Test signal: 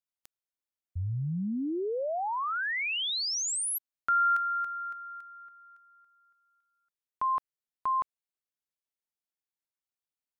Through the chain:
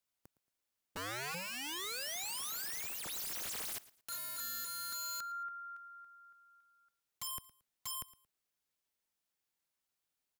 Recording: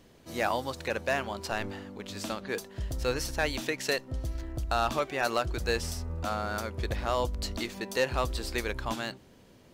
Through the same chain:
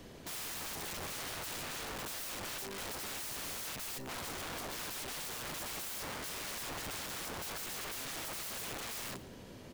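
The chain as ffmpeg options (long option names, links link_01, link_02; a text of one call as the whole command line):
ffmpeg -i in.wav -filter_complex "[0:a]acrossover=split=150|4400[link_01][link_02][link_03];[link_02]acompressor=threshold=-34dB:ratio=5:attack=3.2:release=114:knee=2.83:detection=peak[link_04];[link_01][link_04][link_03]amix=inputs=3:normalize=0,alimiter=level_in=2.5dB:limit=-24dB:level=0:latency=1:release=96,volume=-2.5dB,aeval=exprs='(mod(141*val(0)+1,2)-1)/141':channel_layout=same,aecho=1:1:113|226:0.106|0.0286,volume=6dB" out.wav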